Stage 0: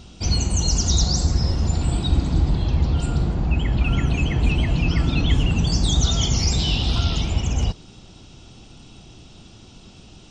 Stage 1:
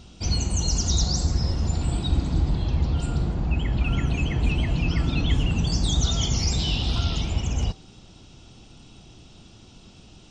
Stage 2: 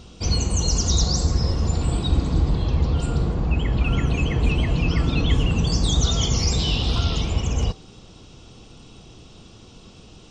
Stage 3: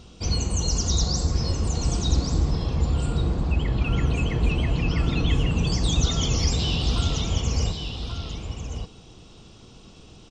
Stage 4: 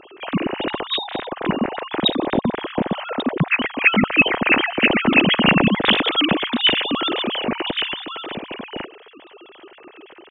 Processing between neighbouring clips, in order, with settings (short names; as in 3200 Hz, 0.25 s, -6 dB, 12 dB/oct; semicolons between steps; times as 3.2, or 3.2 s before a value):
de-hum 385.6 Hz, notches 25; gain -3.5 dB
small resonant body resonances 470/1100 Hz, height 7 dB, ringing for 25 ms; gain +2.5 dB
echo 1.135 s -7 dB; gain -3 dB
sine-wave speech; gain +2.5 dB